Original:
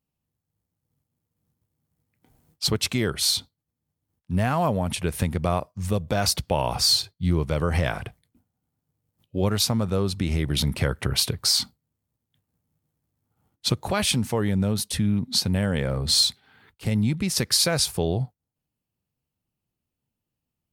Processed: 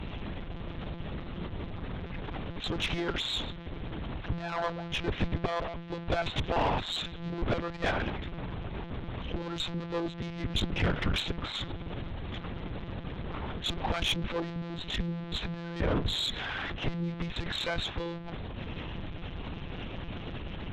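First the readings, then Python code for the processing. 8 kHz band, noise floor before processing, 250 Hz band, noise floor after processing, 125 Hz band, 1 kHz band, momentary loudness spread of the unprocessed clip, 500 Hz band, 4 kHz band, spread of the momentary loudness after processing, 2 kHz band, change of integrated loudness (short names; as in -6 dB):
-22.0 dB, -85 dBFS, -8.0 dB, -42 dBFS, -8.5 dB, -4.0 dB, 8 LU, -6.5 dB, -9.0 dB, 10 LU, -2.0 dB, -10.5 dB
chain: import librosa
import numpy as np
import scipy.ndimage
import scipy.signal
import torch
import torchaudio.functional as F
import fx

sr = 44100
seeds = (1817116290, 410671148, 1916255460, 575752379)

y = x + 0.5 * 10.0 ** (-27.0 / 20.0) * np.sign(x)
y = fx.lpc_monotone(y, sr, seeds[0], pitch_hz=170.0, order=10)
y = fx.tube_stage(y, sr, drive_db=22.0, bias=0.45)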